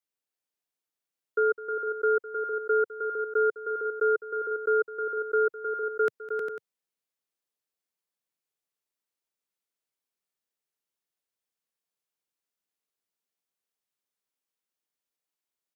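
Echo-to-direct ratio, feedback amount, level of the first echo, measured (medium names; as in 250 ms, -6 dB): -3.5 dB, no regular repeats, -16.5 dB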